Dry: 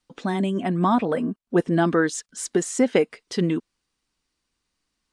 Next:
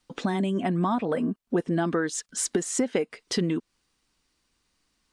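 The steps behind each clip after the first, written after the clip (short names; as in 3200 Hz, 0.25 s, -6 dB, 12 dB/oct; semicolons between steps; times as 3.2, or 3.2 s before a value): compressor 4:1, threshold -29 dBFS, peak gain reduction 13 dB; gain +5 dB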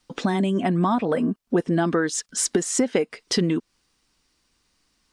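bell 5300 Hz +3 dB 0.35 oct; gain +4 dB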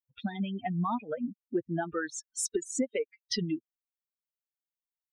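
per-bin expansion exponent 3; gain -4.5 dB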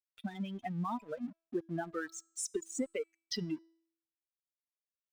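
crossover distortion -52.5 dBFS; resonator 330 Hz, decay 0.64 s, mix 40%; gain -1 dB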